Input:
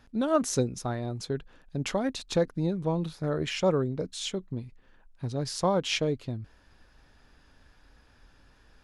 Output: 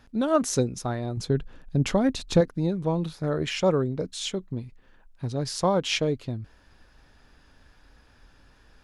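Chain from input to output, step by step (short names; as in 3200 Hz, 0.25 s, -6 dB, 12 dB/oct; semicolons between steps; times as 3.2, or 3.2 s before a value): 1.17–2.41 low shelf 290 Hz +9 dB; gain +2.5 dB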